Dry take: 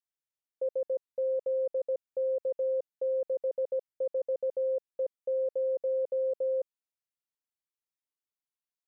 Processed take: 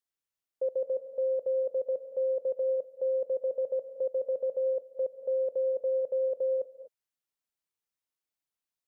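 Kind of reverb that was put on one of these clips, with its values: gated-style reverb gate 270 ms rising, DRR 11 dB; trim +1.5 dB

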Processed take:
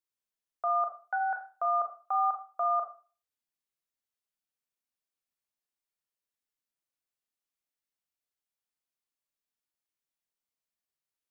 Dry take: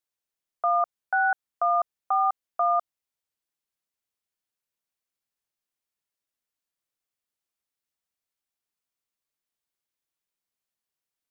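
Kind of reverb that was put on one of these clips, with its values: Schroeder reverb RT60 0.38 s, combs from 26 ms, DRR 4 dB; trim -6.5 dB

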